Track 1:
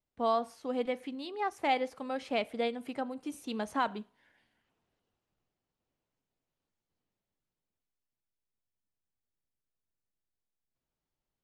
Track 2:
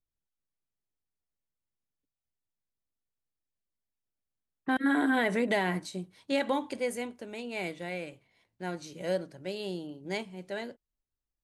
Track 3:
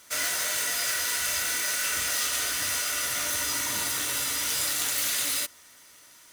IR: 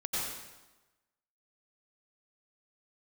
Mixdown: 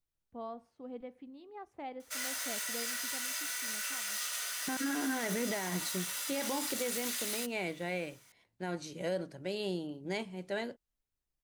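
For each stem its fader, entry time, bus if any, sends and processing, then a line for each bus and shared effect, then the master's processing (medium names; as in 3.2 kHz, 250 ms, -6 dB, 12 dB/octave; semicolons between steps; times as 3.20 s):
-15.5 dB, 0.15 s, no send, tilt EQ -3 dB/octave; auto duck -15 dB, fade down 1.85 s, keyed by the second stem
+0.5 dB, 0.00 s, no send, peak limiter -24 dBFS, peak gain reduction 8.5 dB
-9.5 dB, 2.00 s, no send, high-pass 650 Hz 12 dB/octave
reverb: none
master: peak limiter -25 dBFS, peak gain reduction 5 dB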